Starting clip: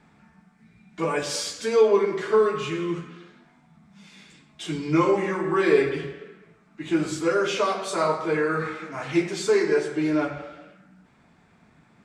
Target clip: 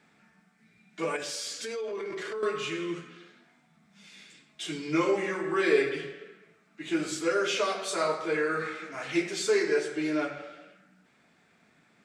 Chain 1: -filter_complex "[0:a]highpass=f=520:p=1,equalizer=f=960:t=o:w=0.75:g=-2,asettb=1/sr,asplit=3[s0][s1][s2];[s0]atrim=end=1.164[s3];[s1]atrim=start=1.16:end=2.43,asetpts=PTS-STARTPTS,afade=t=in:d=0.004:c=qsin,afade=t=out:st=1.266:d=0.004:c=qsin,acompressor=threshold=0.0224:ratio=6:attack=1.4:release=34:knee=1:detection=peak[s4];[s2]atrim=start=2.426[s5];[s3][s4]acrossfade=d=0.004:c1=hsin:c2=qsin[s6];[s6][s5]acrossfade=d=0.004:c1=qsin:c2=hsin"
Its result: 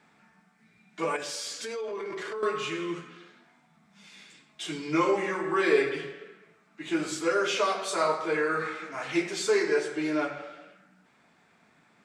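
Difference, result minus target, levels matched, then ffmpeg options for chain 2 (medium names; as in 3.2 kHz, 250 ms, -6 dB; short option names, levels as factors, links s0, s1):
1 kHz band +3.0 dB
-filter_complex "[0:a]highpass=f=520:p=1,equalizer=f=960:t=o:w=0.75:g=-8,asettb=1/sr,asplit=3[s0][s1][s2];[s0]atrim=end=1.164[s3];[s1]atrim=start=1.16:end=2.43,asetpts=PTS-STARTPTS,afade=t=in:d=0.004:c=qsin,afade=t=out:st=1.266:d=0.004:c=qsin,acompressor=threshold=0.0224:ratio=6:attack=1.4:release=34:knee=1:detection=peak[s4];[s2]atrim=start=2.426[s5];[s3][s4]acrossfade=d=0.004:c1=hsin:c2=qsin[s6];[s6][s5]acrossfade=d=0.004:c1=qsin:c2=hsin"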